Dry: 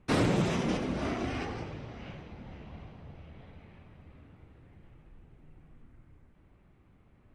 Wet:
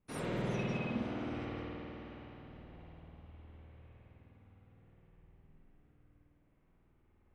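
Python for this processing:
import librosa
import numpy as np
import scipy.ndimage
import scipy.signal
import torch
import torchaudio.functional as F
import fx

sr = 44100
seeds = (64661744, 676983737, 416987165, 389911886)

y = fx.rev_spring(x, sr, rt60_s=3.2, pass_ms=(51,), chirp_ms=30, drr_db=-9.0)
y = fx.noise_reduce_blind(y, sr, reduce_db=19)
y = F.gain(torch.from_numpy(y), 1.0).numpy()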